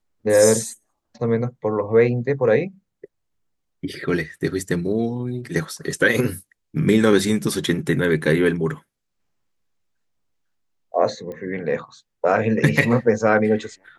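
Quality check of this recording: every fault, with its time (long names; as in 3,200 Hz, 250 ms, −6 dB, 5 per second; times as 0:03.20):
0:11.32: click −23 dBFS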